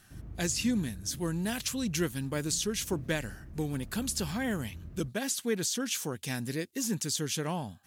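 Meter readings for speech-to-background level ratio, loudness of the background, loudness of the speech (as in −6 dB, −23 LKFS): 15.5 dB, −48.0 LKFS, −32.5 LKFS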